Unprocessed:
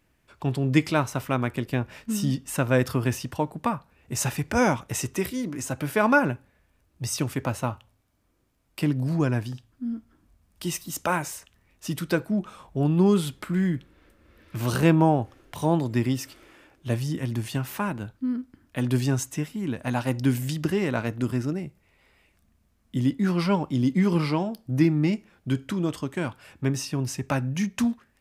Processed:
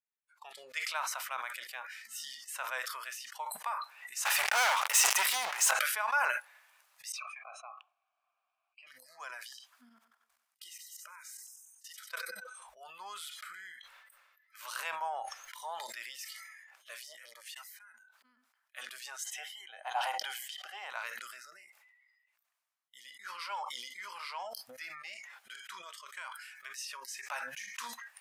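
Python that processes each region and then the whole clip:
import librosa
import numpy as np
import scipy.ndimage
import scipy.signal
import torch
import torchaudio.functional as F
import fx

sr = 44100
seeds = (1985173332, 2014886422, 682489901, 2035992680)

y = fx.chain(x, sr, fx.leveller(passes=5),
    fx.low_shelf(hz=160.0, db=10.5), at=(4.25, 5.71))
y = fx.chain(y, sr, fx.peak_eq(hz=1700.0, db=4.5, octaves=0.57),
    fx.leveller(passes=1),
    fx.vowel_filter(vowel='a'), at=(7.12, 8.87))
y = fx.chain(y, sr, fx.level_steps(step_db=20),
    fx.echo_split(split_hz=420.0, low_ms=154, high_ms=94, feedback_pct=52, wet_db=-12.5), at=(9.89, 12.62))
y = fx.chain(y, sr, fx.highpass(hz=66.0, slope=24),
    fx.auto_swell(attack_ms=508.0),
    fx.transformer_sat(knee_hz=440.0), at=(17.01, 18.37))
y = fx.chain(y, sr, fx.highpass(hz=320.0, slope=24),
    fx.high_shelf(hz=3500.0, db=-8.0),
    fx.small_body(hz=(750.0, 3100.0), ring_ms=20, db=14), at=(19.24, 20.9))
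y = fx.chain(y, sr, fx.dynamic_eq(hz=520.0, q=2.5, threshold_db=-46.0, ratio=4.0, max_db=-6),
    fx.band_squash(depth_pct=70), at=(26.06, 26.78))
y = fx.noise_reduce_blind(y, sr, reduce_db=22)
y = scipy.signal.sosfilt(scipy.signal.cheby2(4, 50, 320.0, 'highpass', fs=sr, output='sos'), y)
y = fx.sustainer(y, sr, db_per_s=31.0)
y = y * 10.0 ** (-8.5 / 20.0)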